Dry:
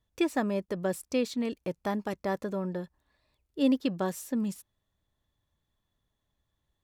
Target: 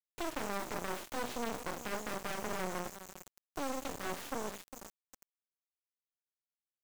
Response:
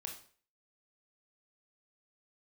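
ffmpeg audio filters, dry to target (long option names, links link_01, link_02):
-filter_complex "[1:a]atrim=start_sample=2205,asetrate=83790,aresample=44100[link_01];[0:a][link_01]afir=irnorm=-1:irlink=0,acompressor=threshold=-45dB:ratio=5,asplit=2[link_02][link_03];[link_03]adelay=404,lowpass=frequency=2200:poles=1,volume=-17dB,asplit=2[link_04][link_05];[link_05]adelay=404,lowpass=frequency=2200:poles=1,volume=0.46,asplit=2[link_06][link_07];[link_07]adelay=404,lowpass=frequency=2200:poles=1,volume=0.46,asplit=2[link_08][link_09];[link_09]adelay=404,lowpass=frequency=2200:poles=1,volume=0.46[link_10];[link_02][link_04][link_06][link_08][link_10]amix=inputs=5:normalize=0,alimiter=level_in=21.5dB:limit=-24dB:level=0:latency=1:release=46,volume=-21.5dB,aeval=exprs='val(0)+0.00141*sin(2*PI*6900*n/s)':channel_layout=same,aeval=exprs='0.015*(cos(1*acos(clip(val(0)/0.015,-1,1)))-cos(1*PI/2))+0.00188*(cos(5*acos(clip(val(0)/0.015,-1,1)))-cos(5*PI/2))+0.00668*(cos(8*acos(clip(val(0)/0.015,-1,1)))-cos(8*PI/2))':channel_layout=same,bass=frequency=250:gain=-13,treble=frequency=4000:gain=-15,acrusher=bits=7:dc=4:mix=0:aa=0.000001,volume=17.5dB"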